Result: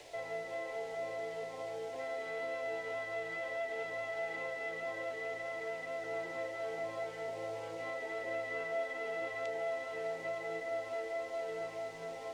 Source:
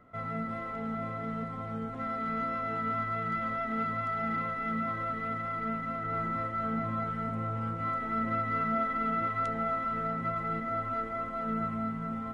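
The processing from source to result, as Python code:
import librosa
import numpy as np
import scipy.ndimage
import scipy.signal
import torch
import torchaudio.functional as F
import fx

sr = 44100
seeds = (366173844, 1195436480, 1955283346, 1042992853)

p1 = scipy.signal.sosfilt(scipy.signal.butter(2, 410.0, 'highpass', fs=sr, output='sos'), x)
p2 = fx.quant_dither(p1, sr, seeds[0], bits=8, dither='triangular')
p3 = p1 + (p2 * 10.0 ** (-6.0 / 20.0))
p4 = fx.air_absorb(p3, sr, metres=99.0)
p5 = fx.fixed_phaser(p4, sr, hz=530.0, stages=4)
p6 = fx.band_squash(p5, sr, depth_pct=40)
y = p6 * 10.0 ** (1.0 / 20.0)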